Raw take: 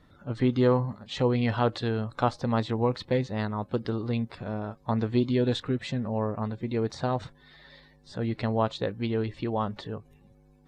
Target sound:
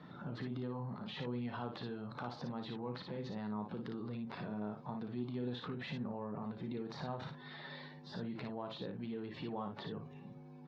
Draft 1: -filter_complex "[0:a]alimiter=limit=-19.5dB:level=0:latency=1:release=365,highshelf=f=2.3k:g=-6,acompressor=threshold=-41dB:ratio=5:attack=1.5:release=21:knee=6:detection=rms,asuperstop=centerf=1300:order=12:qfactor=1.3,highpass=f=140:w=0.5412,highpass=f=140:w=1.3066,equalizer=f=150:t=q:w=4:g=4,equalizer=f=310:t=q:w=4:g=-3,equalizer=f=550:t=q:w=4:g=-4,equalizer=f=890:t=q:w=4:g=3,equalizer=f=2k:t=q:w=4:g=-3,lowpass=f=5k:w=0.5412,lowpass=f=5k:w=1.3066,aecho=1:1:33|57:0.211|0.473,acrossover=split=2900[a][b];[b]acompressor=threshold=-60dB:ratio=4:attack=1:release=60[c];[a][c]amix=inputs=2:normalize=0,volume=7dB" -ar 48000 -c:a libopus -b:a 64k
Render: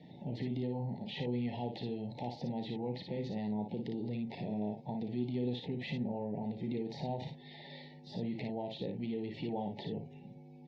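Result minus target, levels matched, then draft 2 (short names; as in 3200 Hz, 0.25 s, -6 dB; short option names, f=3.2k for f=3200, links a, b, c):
compressor: peak gain reduction -5 dB; 1000 Hz band -3.5 dB
-filter_complex "[0:a]alimiter=limit=-19.5dB:level=0:latency=1:release=365,highshelf=f=2.3k:g=-6,acompressor=threshold=-47dB:ratio=5:attack=1.5:release=21:knee=6:detection=rms,highpass=f=140:w=0.5412,highpass=f=140:w=1.3066,equalizer=f=150:t=q:w=4:g=4,equalizer=f=310:t=q:w=4:g=-3,equalizer=f=550:t=q:w=4:g=-4,equalizer=f=890:t=q:w=4:g=3,equalizer=f=2k:t=q:w=4:g=-3,lowpass=f=5k:w=0.5412,lowpass=f=5k:w=1.3066,aecho=1:1:33|57:0.211|0.473,acrossover=split=2900[a][b];[b]acompressor=threshold=-60dB:ratio=4:attack=1:release=60[c];[a][c]amix=inputs=2:normalize=0,volume=7dB" -ar 48000 -c:a libopus -b:a 64k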